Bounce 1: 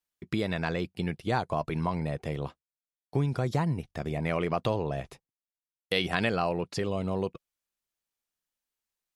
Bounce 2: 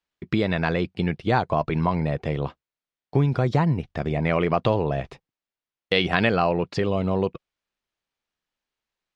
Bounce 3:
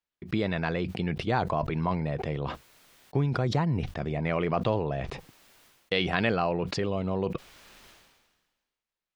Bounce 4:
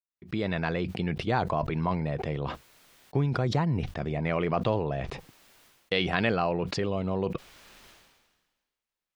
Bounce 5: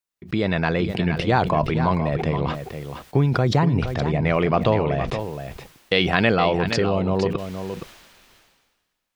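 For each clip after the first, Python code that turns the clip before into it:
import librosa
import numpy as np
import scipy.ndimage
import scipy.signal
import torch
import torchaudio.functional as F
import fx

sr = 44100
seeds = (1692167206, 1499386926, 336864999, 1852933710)

y1 = scipy.signal.sosfilt(scipy.signal.butter(2, 4000.0, 'lowpass', fs=sr, output='sos'), x)
y1 = F.gain(torch.from_numpy(y1), 7.0).numpy()
y2 = fx.sustainer(y1, sr, db_per_s=42.0)
y2 = F.gain(torch.from_numpy(y2), -6.0).numpy()
y3 = fx.fade_in_head(y2, sr, length_s=0.51)
y4 = y3 + 10.0 ** (-9.0 / 20.0) * np.pad(y3, (int(469 * sr / 1000.0), 0))[:len(y3)]
y4 = F.gain(torch.from_numpy(y4), 7.5).numpy()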